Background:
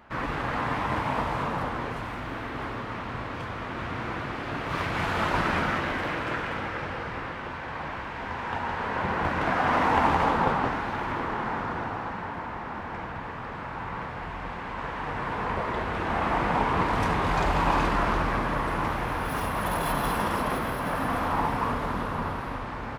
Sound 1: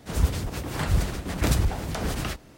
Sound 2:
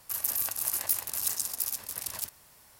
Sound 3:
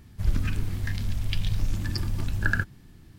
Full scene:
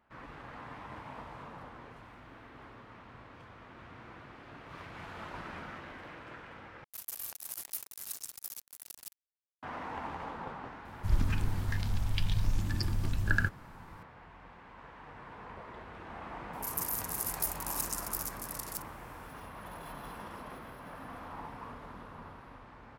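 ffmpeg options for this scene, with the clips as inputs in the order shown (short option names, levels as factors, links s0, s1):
-filter_complex "[2:a]asplit=2[s0][s1];[0:a]volume=0.126[s2];[s0]acrusher=bits=4:mix=0:aa=0.5[s3];[s1]equalizer=f=3000:w=1.5:g=-5[s4];[s2]asplit=2[s5][s6];[s5]atrim=end=6.844[s7];[s3]atrim=end=2.79,asetpts=PTS-STARTPTS,volume=0.266[s8];[s6]atrim=start=9.626[s9];[3:a]atrim=end=3.18,asetpts=PTS-STARTPTS,volume=0.668,afade=t=in:d=0.004:c=hsin,afade=t=out:st=3.176:d=0.004:c=hsin,adelay=10850[s10];[s4]atrim=end=2.79,asetpts=PTS-STARTPTS,volume=0.531,afade=t=in:d=0.004:c=hsin,afade=t=out:st=2.786:d=0.004:c=hsin,adelay=16530[s11];[s7][s8]acrossfade=d=0.004:c1=hsin:c2=hsin[s12];[s12][s9]acrossfade=d=0.004:c1=hsin:c2=hsin[s13];[s13][s10][s11]amix=inputs=3:normalize=0"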